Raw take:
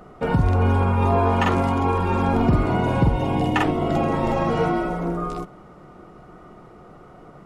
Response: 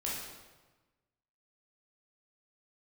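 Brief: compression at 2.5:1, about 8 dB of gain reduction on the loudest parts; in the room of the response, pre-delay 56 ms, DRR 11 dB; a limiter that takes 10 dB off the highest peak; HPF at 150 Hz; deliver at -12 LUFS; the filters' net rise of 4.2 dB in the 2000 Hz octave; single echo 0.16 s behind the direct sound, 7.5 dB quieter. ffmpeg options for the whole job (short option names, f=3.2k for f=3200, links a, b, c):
-filter_complex "[0:a]highpass=150,equalizer=f=2k:t=o:g=5.5,acompressor=threshold=-27dB:ratio=2.5,alimiter=limit=-23.5dB:level=0:latency=1,aecho=1:1:160:0.422,asplit=2[a][b];[1:a]atrim=start_sample=2205,adelay=56[c];[b][c]afir=irnorm=-1:irlink=0,volume=-14.5dB[d];[a][d]amix=inputs=2:normalize=0,volume=19dB"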